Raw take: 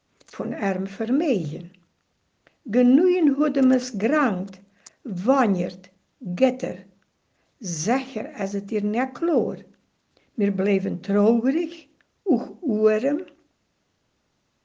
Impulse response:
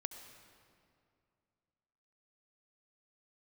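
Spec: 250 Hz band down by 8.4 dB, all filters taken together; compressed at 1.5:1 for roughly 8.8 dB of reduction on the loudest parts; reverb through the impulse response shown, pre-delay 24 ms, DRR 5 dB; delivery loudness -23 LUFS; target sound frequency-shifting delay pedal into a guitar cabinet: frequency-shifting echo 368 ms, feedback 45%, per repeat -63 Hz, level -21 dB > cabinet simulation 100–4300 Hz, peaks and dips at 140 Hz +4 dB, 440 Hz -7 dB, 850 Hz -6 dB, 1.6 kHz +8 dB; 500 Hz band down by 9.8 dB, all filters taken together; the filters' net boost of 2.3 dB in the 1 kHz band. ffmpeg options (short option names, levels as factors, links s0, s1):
-filter_complex "[0:a]equalizer=f=250:t=o:g=-8,equalizer=f=500:t=o:g=-8,equalizer=f=1000:t=o:g=8.5,acompressor=threshold=0.0112:ratio=1.5,asplit=2[s0][s1];[1:a]atrim=start_sample=2205,adelay=24[s2];[s1][s2]afir=irnorm=-1:irlink=0,volume=0.708[s3];[s0][s3]amix=inputs=2:normalize=0,asplit=4[s4][s5][s6][s7];[s5]adelay=368,afreqshift=-63,volume=0.0891[s8];[s6]adelay=736,afreqshift=-126,volume=0.0403[s9];[s7]adelay=1104,afreqshift=-189,volume=0.018[s10];[s4][s8][s9][s10]amix=inputs=4:normalize=0,highpass=100,equalizer=f=140:t=q:w=4:g=4,equalizer=f=440:t=q:w=4:g=-7,equalizer=f=850:t=q:w=4:g=-6,equalizer=f=1600:t=q:w=4:g=8,lowpass=f=4300:w=0.5412,lowpass=f=4300:w=1.3066,volume=3.16"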